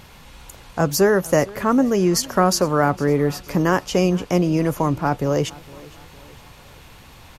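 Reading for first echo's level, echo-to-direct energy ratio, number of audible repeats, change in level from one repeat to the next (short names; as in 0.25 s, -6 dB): -22.0 dB, -21.0 dB, 2, -6.5 dB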